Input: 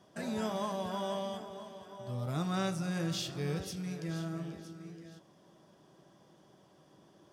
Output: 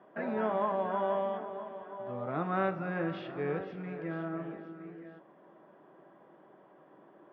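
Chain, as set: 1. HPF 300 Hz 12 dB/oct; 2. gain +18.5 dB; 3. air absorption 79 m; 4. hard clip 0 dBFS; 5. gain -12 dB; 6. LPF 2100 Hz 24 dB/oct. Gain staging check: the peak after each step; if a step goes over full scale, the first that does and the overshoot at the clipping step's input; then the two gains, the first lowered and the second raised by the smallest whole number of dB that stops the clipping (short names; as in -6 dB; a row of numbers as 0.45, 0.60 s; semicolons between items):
-21.5, -3.0, -4.0, -4.0, -16.0, -16.5 dBFS; no overload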